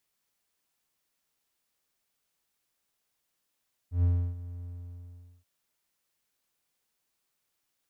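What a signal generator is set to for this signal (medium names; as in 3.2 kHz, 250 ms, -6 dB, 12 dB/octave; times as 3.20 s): ADSR triangle 87.7 Hz, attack 121 ms, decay 316 ms, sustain -17 dB, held 0.73 s, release 802 ms -18 dBFS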